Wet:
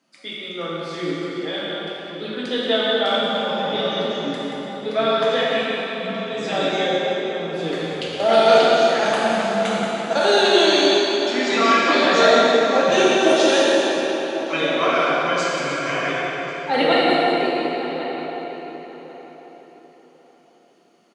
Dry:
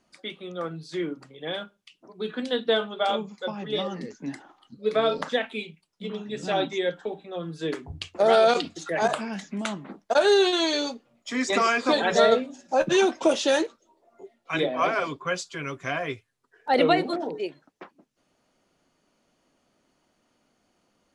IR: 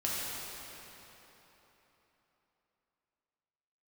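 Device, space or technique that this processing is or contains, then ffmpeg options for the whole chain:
PA in a hall: -filter_complex "[0:a]asettb=1/sr,asplit=3[a][b][c];[a]atrim=end=11.334[d];[b]atrim=start=11.33:end=11.97,asetpts=PTS-STARTPTS,afade=t=in:d=0.004:c=qsin,afade=t=out:st=0.636:d=0.004:c=qsin,lowpass=5.7k[e];[c]atrim=start=11.966[f];[d][e]acrossfade=d=0.004:c1=hsin:c2=qsin[g];[g][f]acrossfade=d=0.004:c1=qsin:c2=hsin,highpass=f=150:w=0.5412,highpass=f=150:w=1.3066,equalizer=f=3.1k:t=o:w=1.6:g=4,aecho=1:1:180:0.398,asplit=2[h][i];[i]adelay=1096,lowpass=f=2k:p=1,volume=-12dB,asplit=2[j][k];[k]adelay=1096,lowpass=f=2k:p=1,volume=0.22,asplit=2[l][m];[m]adelay=1096,lowpass=f=2k:p=1,volume=0.22[n];[h][j][l][n]amix=inputs=4:normalize=0[o];[1:a]atrim=start_sample=2205[p];[o][p]afir=irnorm=-1:irlink=0,volume=-1.5dB"

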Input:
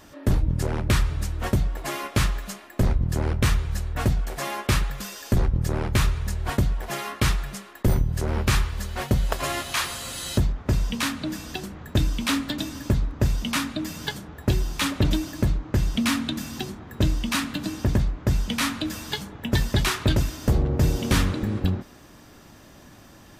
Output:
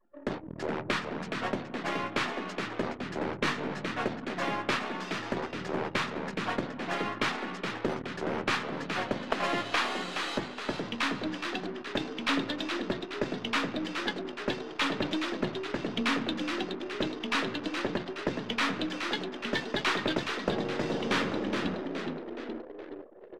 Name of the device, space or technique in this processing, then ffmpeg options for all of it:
crystal radio: -filter_complex "[0:a]asplit=8[a][b][c][d][e][f][g][h];[b]adelay=420,afreqshift=68,volume=-6.5dB[i];[c]adelay=840,afreqshift=136,volume=-12dB[j];[d]adelay=1260,afreqshift=204,volume=-17.5dB[k];[e]adelay=1680,afreqshift=272,volume=-23dB[l];[f]adelay=2100,afreqshift=340,volume=-28.6dB[m];[g]adelay=2520,afreqshift=408,volume=-34.1dB[n];[h]adelay=2940,afreqshift=476,volume=-39.6dB[o];[a][i][j][k][l][m][n][o]amix=inputs=8:normalize=0,highpass=250,lowpass=3.5k,highpass=f=260:p=1,aeval=exprs='if(lt(val(0),0),0.708*val(0),val(0))':c=same,asettb=1/sr,asplit=3[p][q][r];[p]atrim=end=3.434[s];[q]atrim=start=3.43:end=3.86,asetpts=PTS-STARTPTS,afade=t=in:d=0.004:c=qsin,afade=t=out:st=0.426:d=0.004:c=qsin,asplit=2[t][u];[u]adelay=20,volume=-4.5dB[v];[t][v]amix=inputs=2:normalize=0,atrim=end_sample=18963[w];[r]atrim=start=3.856[x];[s][w]acrossfade=d=0.004:c1=hsin:c2=qsin[y];[y][x]acrossfade=d=0.004:c1=qsin:c2=hsin,anlmdn=0.1"

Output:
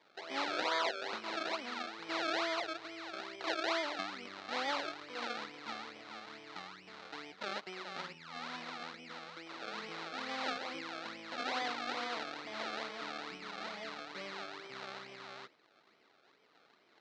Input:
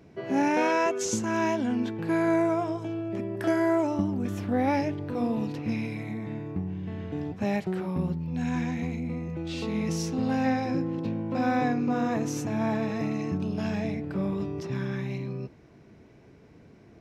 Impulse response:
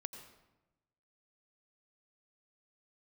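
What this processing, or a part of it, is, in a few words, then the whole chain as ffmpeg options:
circuit-bent sampling toy: -af "acrusher=samples=31:mix=1:aa=0.000001:lfo=1:lforange=31:lforate=2.3,highpass=570,equalizer=f=1.3k:t=q:w=4:g=6,equalizer=f=2.1k:t=q:w=4:g=4,equalizer=f=4k:t=q:w=4:g=8,lowpass=f=5.4k:w=0.5412,lowpass=f=5.4k:w=1.3066,volume=-8.5dB"

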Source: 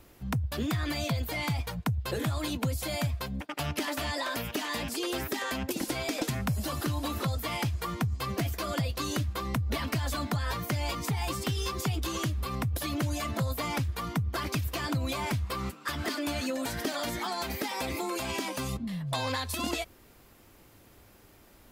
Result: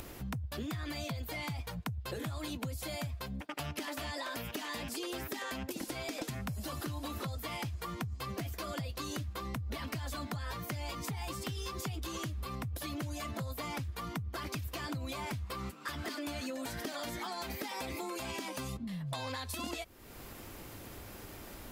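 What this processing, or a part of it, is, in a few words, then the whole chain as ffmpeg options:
upward and downward compression: -af "acompressor=mode=upward:threshold=-36dB:ratio=2.5,acompressor=threshold=-37dB:ratio=3,volume=-1dB"

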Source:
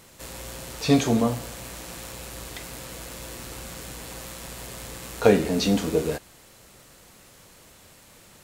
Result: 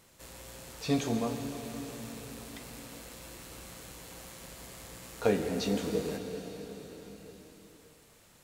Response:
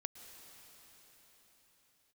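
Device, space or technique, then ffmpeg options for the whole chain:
cathedral: -filter_complex "[1:a]atrim=start_sample=2205[a];[0:a][a]afir=irnorm=-1:irlink=0,volume=-6dB"

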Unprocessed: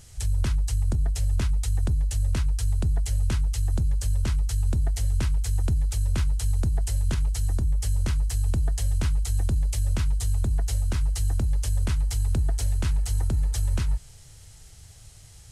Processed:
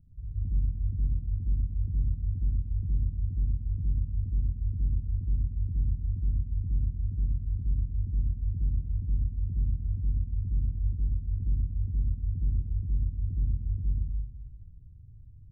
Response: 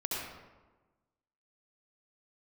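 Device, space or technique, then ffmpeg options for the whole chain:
club heard from the street: -filter_complex "[0:a]alimiter=limit=-22dB:level=0:latency=1,lowpass=f=250:w=0.5412,lowpass=f=250:w=1.3066[a];[1:a]atrim=start_sample=2205[b];[a][b]afir=irnorm=-1:irlink=0,volume=-6dB"

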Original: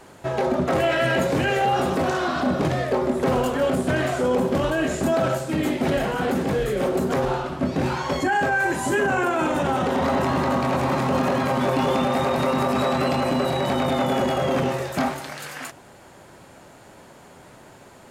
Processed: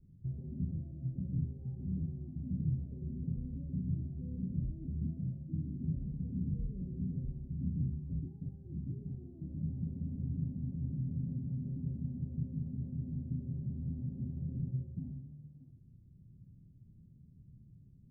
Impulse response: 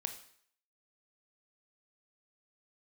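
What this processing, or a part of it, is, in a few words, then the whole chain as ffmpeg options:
club heard from the street: -filter_complex "[0:a]alimiter=limit=-17dB:level=0:latency=1:release=38,lowpass=f=160:w=0.5412,lowpass=f=160:w=1.3066[a];[1:a]atrim=start_sample=2205[b];[a][b]afir=irnorm=-1:irlink=0"

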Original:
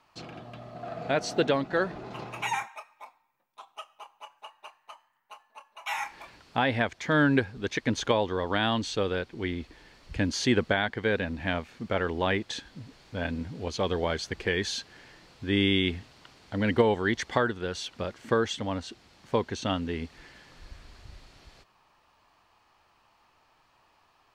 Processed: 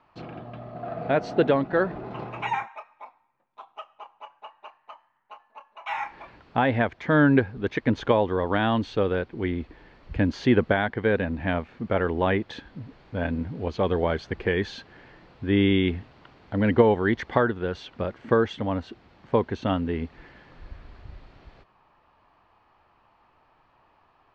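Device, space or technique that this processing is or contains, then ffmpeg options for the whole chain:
phone in a pocket: -af "lowpass=3.6k,highshelf=f=2.4k:g=-11,volume=5dB"

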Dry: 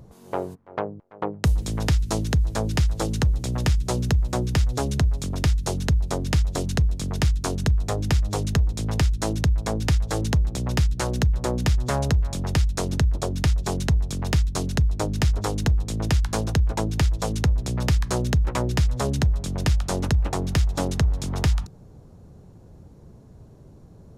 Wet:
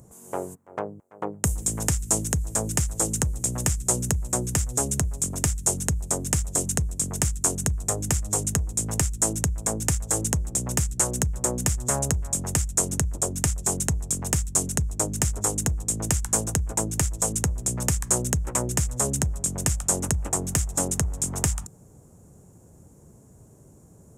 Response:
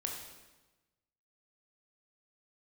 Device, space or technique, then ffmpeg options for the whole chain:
budget condenser microphone: -af "highpass=f=86:p=1,highshelf=f=5.7k:t=q:w=3:g=11.5,volume=-2.5dB"

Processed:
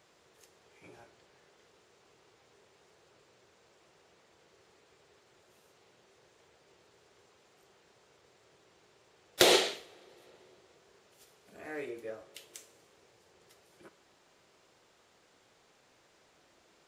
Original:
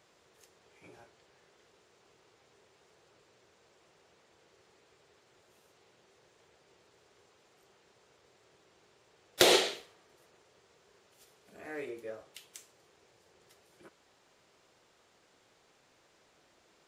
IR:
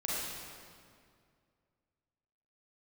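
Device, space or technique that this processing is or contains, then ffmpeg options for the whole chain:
compressed reverb return: -filter_complex "[0:a]asplit=2[a][b];[1:a]atrim=start_sample=2205[c];[b][c]afir=irnorm=-1:irlink=0,acompressor=threshold=-37dB:ratio=6,volume=-18.5dB[d];[a][d]amix=inputs=2:normalize=0"

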